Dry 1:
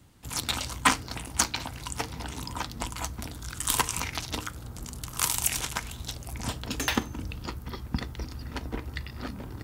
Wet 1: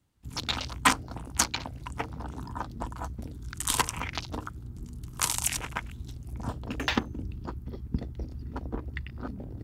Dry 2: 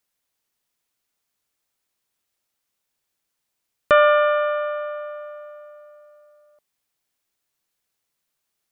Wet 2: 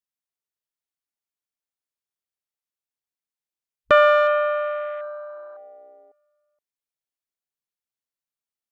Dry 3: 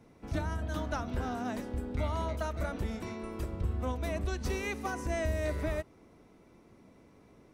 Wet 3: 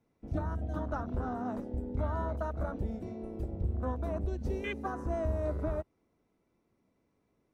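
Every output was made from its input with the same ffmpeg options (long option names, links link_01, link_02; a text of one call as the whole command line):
ffmpeg -i in.wav -af "afwtdn=0.0141" out.wav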